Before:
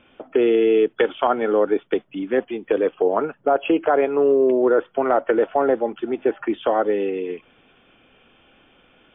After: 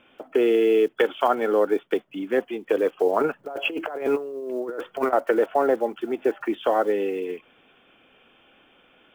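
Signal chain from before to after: block floating point 7-bit; low shelf 150 Hz -10.5 dB; 3.2–5.13 negative-ratio compressor -24 dBFS, ratio -0.5; gain -1 dB

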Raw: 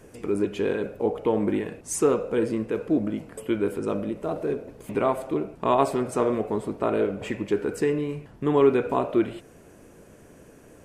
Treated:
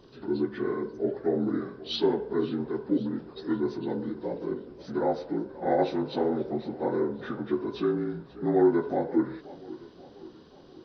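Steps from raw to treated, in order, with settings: inharmonic rescaling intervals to 78%; warbling echo 0.533 s, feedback 55%, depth 122 cents, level -18.5 dB; gain -2 dB

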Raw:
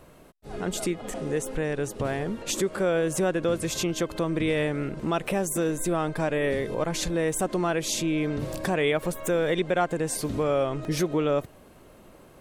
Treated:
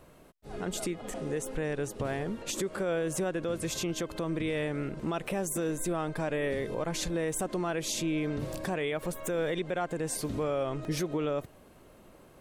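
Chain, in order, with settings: limiter -19 dBFS, peak gain reduction 5 dB; gain -4 dB

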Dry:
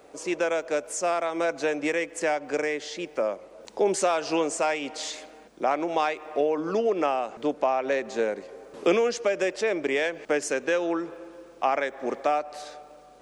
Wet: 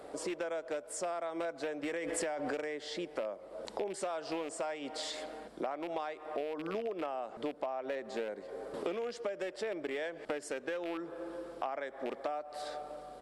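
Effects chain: rattling part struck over -35 dBFS, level -21 dBFS; thirty-one-band EQ 630 Hz +3 dB, 2500 Hz -7 dB, 6300 Hz -11 dB; compressor 5:1, threshold -39 dBFS, peak gain reduction 20 dB; downsampling 32000 Hz; 1.87–2.61 backwards sustainer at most 21 dB/s; gain +2.5 dB

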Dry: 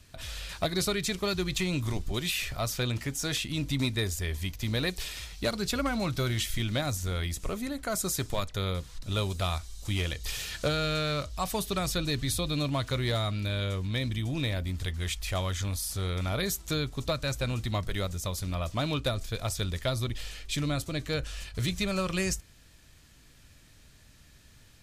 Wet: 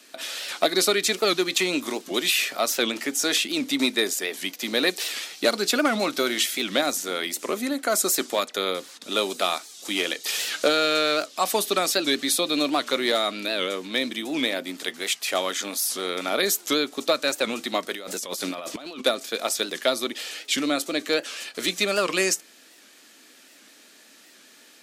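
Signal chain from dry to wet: steep high-pass 250 Hz 36 dB/oct; notch 1000 Hz, Q 13; 17.94–19.02 negative-ratio compressor -43 dBFS, ratio -1; record warp 78 rpm, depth 160 cents; gain +9 dB

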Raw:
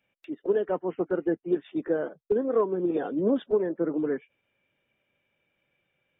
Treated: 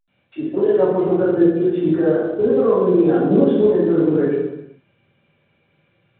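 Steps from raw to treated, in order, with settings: compressor 2.5:1, threshold -26 dBFS, peak gain reduction 5.5 dB; reverb, pre-delay 76 ms; gain +3.5 dB; A-law 64 kbps 8000 Hz

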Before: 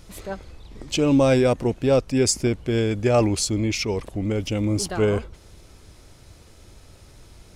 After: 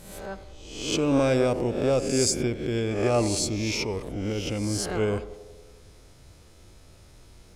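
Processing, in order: spectral swells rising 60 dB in 0.76 s; narrowing echo 92 ms, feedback 71%, band-pass 520 Hz, level -13 dB; gain -6 dB

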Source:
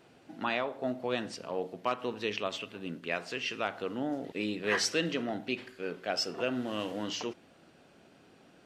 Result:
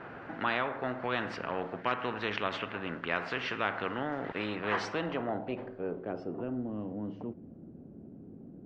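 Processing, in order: low-pass sweep 1500 Hz -> 230 Hz, 4.37–6.73; spectral compressor 2:1

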